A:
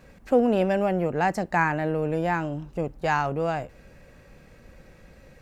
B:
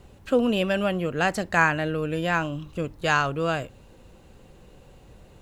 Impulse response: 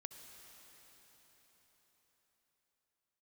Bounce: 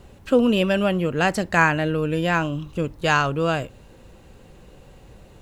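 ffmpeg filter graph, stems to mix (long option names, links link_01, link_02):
-filter_complex "[0:a]volume=-9dB[link_01];[1:a]volume=3dB[link_02];[link_01][link_02]amix=inputs=2:normalize=0"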